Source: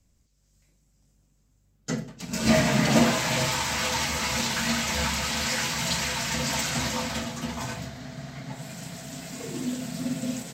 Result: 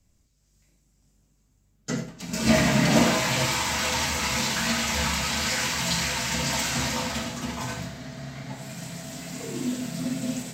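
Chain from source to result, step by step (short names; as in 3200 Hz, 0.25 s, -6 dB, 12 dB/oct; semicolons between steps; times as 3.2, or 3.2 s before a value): non-linear reverb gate 0.12 s flat, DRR 4.5 dB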